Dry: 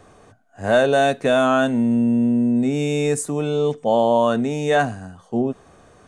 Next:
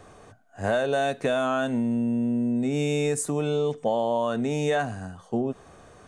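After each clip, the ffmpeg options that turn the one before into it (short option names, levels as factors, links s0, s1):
-af "acompressor=threshold=0.0891:ratio=6,equalizer=f=250:w=1.5:g=-2"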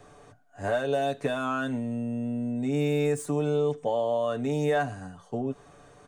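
-filter_complex "[0:a]acrossover=split=700|1800[s0][s1][s2];[s2]asoftclip=type=tanh:threshold=0.02[s3];[s0][s1][s3]amix=inputs=3:normalize=0,aecho=1:1:6.9:0.55,volume=0.631"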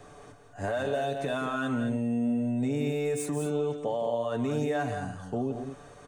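-af "alimiter=level_in=1.12:limit=0.0631:level=0:latency=1:release=76,volume=0.891,aecho=1:1:172|215.7:0.355|0.355,volume=1.33"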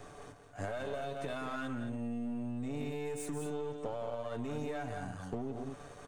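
-af "aeval=exprs='if(lt(val(0),0),0.447*val(0),val(0))':c=same,acompressor=threshold=0.0141:ratio=5,volume=1.19"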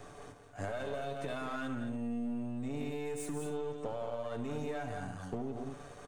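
-af "aecho=1:1:72:0.211"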